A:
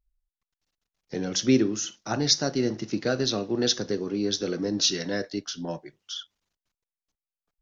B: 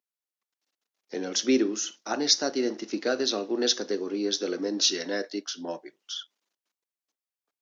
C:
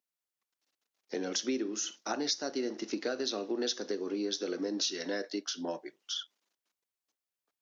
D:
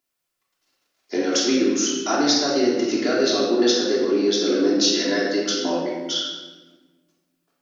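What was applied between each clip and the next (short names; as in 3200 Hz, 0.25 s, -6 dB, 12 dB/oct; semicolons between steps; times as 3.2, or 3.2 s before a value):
HPF 260 Hz 24 dB/oct
compressor 4:1, threshold -31 dBFS, peak gain reduction 12.5 dB
shoebox room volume 1000 m³, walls mixed, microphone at 3.1 m; gain +7.5 dB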